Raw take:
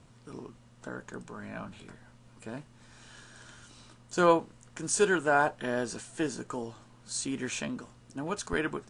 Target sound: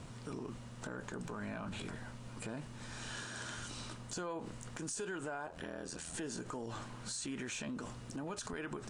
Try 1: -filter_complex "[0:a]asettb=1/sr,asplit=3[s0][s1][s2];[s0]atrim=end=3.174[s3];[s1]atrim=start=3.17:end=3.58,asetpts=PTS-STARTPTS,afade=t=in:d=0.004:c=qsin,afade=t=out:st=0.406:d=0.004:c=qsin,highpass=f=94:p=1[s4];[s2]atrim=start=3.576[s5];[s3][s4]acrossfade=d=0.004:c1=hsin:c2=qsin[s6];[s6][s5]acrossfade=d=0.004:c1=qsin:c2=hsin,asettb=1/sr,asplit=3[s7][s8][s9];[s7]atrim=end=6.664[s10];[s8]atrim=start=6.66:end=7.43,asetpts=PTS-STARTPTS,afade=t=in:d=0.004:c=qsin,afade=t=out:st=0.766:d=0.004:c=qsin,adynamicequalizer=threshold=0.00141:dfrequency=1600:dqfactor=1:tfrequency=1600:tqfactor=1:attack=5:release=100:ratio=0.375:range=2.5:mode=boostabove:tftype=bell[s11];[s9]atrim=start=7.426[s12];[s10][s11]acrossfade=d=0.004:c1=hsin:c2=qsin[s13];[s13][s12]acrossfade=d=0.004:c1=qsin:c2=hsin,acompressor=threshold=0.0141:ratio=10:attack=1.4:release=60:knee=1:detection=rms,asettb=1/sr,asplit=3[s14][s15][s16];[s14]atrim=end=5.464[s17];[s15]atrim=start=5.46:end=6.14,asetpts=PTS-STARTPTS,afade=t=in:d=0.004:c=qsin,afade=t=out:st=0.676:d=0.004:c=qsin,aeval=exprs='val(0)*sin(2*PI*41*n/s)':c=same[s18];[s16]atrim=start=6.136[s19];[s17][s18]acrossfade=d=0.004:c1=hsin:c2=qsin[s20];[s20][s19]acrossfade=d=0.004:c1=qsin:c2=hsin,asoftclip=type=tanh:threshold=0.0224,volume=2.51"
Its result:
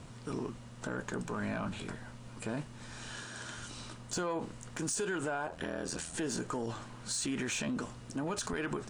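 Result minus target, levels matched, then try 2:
compression: peak gain reduction -7 dB
-filter_complex "[0:a]asettb=1/sr,asplit=3[s0][s1][s2];[s0]atrim=end=3.174[s3];[s1]atrim=start=3.17:end=3.58,asetpts=PTS-STARTPTS,afade=t=in:d=0.004:c=qsin,afade=t=out:st=0.406:d=0.004:c=qsin,highpass=f=94:p=1[s4];[s2]atrim=start=3.576[s5];[s3][s4]acrossfade=d=0.004:c1=hsin:c2=qsin[s6];[s6][s5]acrossfade=d=0.004:c1=qsin:c2=hsin,asettb=1/sr,asplit=3[s7][s8][s9];[s7]atrim=end=6.664[s10];[s8]atrim=start=6.66:end=7.43,asetpts=PTS-STARTPTS,afade=t=in:d=0.004:c=qsin,afade=t=out:st=0.766:d=0.004:c=qsin,adynamicequalizer=threshold=0.00141:dfrequency=1600:dqfactor=1:tfrequency=1600:tqfactor=1:attack=5:release=100:ratio=0.375:range=2.5:mode=boostabove:tftype=bell[s11];[s9]atrim=start=7.426[s12];[s10][s11]acrossfade=d=0.004:c1=hsin:c2=qsin[s13];[s13][s12]acrossfade=d=0.004:c1=qsin:c2=hsin,acompressor=threshold=0.00562:ratio=10:attack=1.4:release=60:knee=1:detection=rms,asettb=1/sr,asplit=3[s14][s15][s16];[s14]atrim=end=5.464[s17];[s15]atrim=start=5.46:end=6.14,asetpts=PTS-STARTPTS,afade=t=in:d=0.004:c=qsin,afade=t=out:st=0.676:d=0.004:c=qsin,aeval=exprs='val(0)*sin(2*PI*41*n/s)':c=same[s18];[s16]atrim=start=6.136[s19];[s17][s18]acrossfade=d=0.004:c1=hsin:c2=qsin[s20];[s20][s19]acrossfade=d=0.004:c1=qsin:c2=hsin,asoftclip=type=tanh:threshold=0.0224,volume=2.51"

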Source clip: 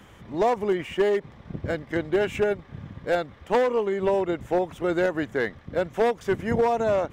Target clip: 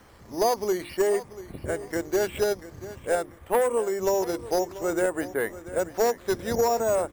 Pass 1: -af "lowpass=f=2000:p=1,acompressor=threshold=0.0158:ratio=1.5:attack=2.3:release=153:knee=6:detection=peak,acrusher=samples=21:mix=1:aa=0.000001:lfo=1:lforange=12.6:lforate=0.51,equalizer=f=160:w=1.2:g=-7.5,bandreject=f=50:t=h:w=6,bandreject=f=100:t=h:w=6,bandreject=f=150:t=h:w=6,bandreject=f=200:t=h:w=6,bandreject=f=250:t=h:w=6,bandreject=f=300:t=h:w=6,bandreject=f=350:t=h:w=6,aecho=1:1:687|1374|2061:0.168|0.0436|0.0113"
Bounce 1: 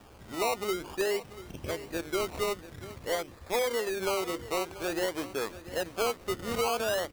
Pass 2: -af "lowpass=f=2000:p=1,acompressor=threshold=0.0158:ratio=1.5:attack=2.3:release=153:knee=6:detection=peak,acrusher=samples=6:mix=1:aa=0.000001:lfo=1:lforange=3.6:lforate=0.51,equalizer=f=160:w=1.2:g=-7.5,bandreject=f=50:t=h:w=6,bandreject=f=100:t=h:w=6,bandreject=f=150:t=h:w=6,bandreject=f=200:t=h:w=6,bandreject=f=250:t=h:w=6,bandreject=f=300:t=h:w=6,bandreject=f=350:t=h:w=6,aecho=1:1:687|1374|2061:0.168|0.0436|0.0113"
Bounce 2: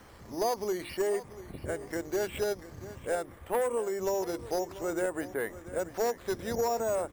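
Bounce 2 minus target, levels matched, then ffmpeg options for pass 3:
compression: peak gain reduction +7 dB
-af "lowpass=f=2000:p=1,acrusher=samples=6:mix=1:aa=0.000001:lfo=1:lforange=3.6:lforate=0.51,equalizer=f=160:w=1.2:g=-7.5,bandreject=f=50:t=h:w=6,bandreject=f=100:t=h:w=6,bandreject=f=150:t=h:w=6,bandreject=f=200:t=h:w=6,bandreject=f=250:t=h:w=6,bandreject=f=300:t=h:w=6,bandreject=f=350:t=h:w=6,aecho=1:1:687|1374|2061:0.168|0.0436|0.0113"

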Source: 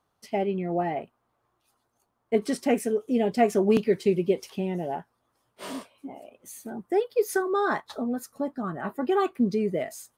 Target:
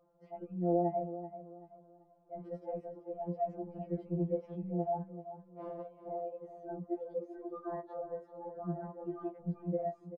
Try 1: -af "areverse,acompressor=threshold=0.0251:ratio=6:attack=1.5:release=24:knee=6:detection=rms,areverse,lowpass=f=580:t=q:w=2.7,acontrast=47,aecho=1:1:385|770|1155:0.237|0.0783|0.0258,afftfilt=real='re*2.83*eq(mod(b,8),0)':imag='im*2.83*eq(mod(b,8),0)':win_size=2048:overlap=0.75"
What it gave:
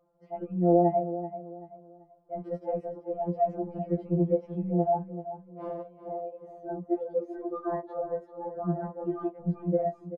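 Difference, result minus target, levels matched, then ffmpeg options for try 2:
compression: peak gain reduction -8.5 dB
-af "areverse,acompressor=threshold=0.0075:ratio=6:attack=1.5:release=24:knee=6:detection=rms,areverse,lowpass=f=580:t=q:w=2.7,acontrast=47,aecho=1:1:385|770|1155:0.237|0.0783|0.0258,afftfilt=real='re*2.83*eq(mod(b,8),0)':imag='im*2.83*eq(mod(b,8),0)':win_size=2048:overlap=0.75"

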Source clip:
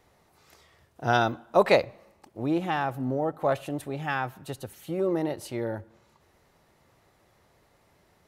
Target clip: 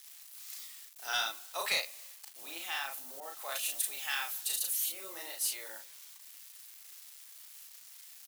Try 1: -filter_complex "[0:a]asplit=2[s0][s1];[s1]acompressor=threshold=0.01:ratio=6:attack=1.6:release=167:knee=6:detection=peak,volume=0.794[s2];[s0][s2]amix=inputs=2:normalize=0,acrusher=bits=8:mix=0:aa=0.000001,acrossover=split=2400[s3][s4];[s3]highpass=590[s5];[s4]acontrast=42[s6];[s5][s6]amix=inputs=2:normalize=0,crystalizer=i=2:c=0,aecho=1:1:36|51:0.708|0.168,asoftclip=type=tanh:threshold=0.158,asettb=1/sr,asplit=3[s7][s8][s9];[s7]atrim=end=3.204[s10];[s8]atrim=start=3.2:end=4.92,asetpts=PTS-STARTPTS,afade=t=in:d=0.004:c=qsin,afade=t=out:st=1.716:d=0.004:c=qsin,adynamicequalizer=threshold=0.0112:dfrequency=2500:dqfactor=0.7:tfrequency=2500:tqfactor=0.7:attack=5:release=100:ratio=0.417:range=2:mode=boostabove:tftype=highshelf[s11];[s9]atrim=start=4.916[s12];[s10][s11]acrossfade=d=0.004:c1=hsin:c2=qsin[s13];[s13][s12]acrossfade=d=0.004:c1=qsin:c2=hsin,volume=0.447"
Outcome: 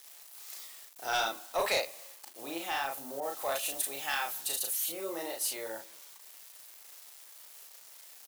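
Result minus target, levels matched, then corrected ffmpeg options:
500 Hz band +10.0 dB
-filter_complex "[0:a]asplit=2[s0][s1];[s1]acompressor=threshold=0.01:ratio=6:attack=1.6:release=167:knee=6:detection=peak,volume=0.794[s2];[s0][s2]amix=inputs=2:normalize=0,acrusher=bits=8:mix=0:aa=0.000001,acrossover=split=2400[s3][s4];[s3]highpass=1400[s5];[s4]acontrast=42[s6];[s5][s6]amix=inputs=2:normalize=0,crystalizer=i=2:c=0,aecho=1:1:36|51:0.708|0.168,asoftclip=type=tanh:threshold=0.158,asettb=1/sr,asplit=3[s7][s8][s9];[s7]atrim=end=3.204[s10];[s8]atrim=start=3.2:end=4.92,asetpts=PTS-STARTPTS,afade=t=in:d=0.004:c=qsin,afade=t=out:st=1.716:d=0.004:c=qsin,adynamicequalizer=threshold=0.0112:dfrequency=2500:dqfactor=0.7:tfrequency=2500:tqfactor=0.7:attack=5:release=100:ratio=0.417:range=2:mode=boostabove:tftype=highshelf[s11];[s9]atrim=start=4.916[s12];[s10][s11]acrossfade=d=0.004:c1=hsin:c2=qsin[s13];[s13][s12]acrossfade=d=0.004:c1=qsin:c2=hsin,volume=0.447"

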